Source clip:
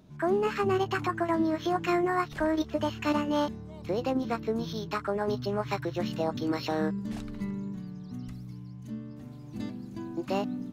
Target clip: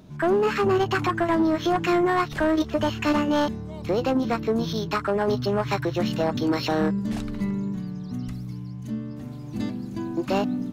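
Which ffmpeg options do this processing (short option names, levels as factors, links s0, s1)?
-af "asoftclip=type=tanh:threshold=0.0708,volume=2.51"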